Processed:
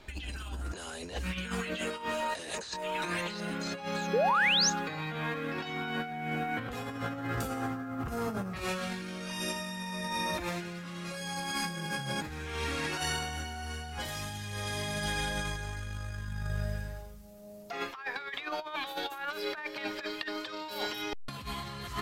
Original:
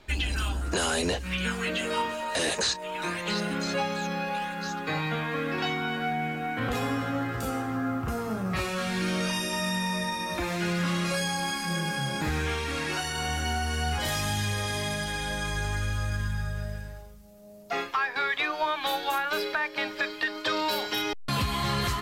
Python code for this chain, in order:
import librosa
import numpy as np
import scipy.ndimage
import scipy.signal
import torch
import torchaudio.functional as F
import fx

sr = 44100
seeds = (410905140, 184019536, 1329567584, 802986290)

y = fx.over_compress(x, sr, threshold_db=-32.0, ratio=-0.5)
y = fx.spec_paint(y, sr, seeds[0], shape='rise', start_s=4.13, length_s=0.57, low_hz=400.0, high_hz=6800.0, level_db=-23.0)
y = y * librosa.db_to_amplitude(-3.0)